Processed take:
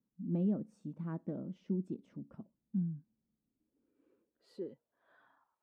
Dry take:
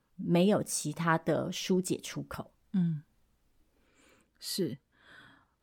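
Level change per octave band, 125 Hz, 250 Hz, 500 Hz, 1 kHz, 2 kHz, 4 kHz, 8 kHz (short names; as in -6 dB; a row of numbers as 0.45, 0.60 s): -6.5 dB, -5.5 dB, -13.0 dB, -22.5 dB, under -25 dB, under -30 dB, under -35 dB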